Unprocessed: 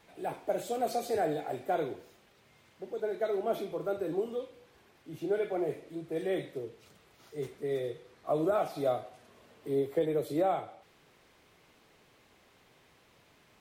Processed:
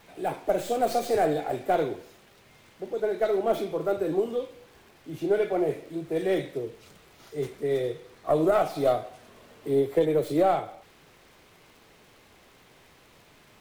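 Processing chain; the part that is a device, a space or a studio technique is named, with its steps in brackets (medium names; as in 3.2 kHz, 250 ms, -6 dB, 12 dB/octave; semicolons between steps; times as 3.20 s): record under a worn stylus (tracing distortion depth 0.075 ms; crackle; pink noise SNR 38 dB); trim +6.5 dB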